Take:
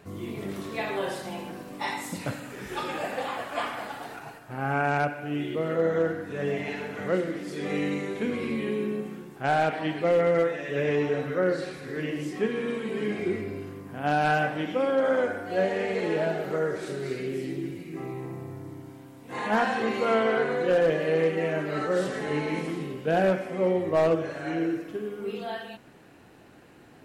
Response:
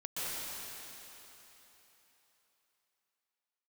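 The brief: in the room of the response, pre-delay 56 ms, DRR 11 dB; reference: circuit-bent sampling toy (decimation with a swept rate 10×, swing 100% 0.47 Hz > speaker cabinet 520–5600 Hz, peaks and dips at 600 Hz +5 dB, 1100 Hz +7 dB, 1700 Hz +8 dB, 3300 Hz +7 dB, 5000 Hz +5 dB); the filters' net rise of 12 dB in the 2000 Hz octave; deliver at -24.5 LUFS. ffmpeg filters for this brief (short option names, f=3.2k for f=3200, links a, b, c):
-filter_complex "[0:a]equalizer=f=2k:t=o:g=8,asplit=2[a][b];[1:a]atrim=start_sample=2205,adelay=56[c];[b][c]afir=irnorm=-1:irlink=0,volume=-16dB[d];[a][d]amix=inputs=2:normalize=0,acrusher=samples=10:mix=1:aa=0.000001:lfo=1:lforange=10:lforate=0.47,highpass=520,equalizer=f=600:t=q:w=4:g=5,equalizer=f=1.1k:t=q:w=4:g=7,equalizer=f=1.7k:t=q:w=4:g=8,equalizer=f=3.3k:t=q:w=4:g=7,equalizer=f=5k:t=q:w=4:g=5,lowpass=f=5.6k:w=0.5412,lowpass=f=5.6k:w=1.3066,volume=-1dB"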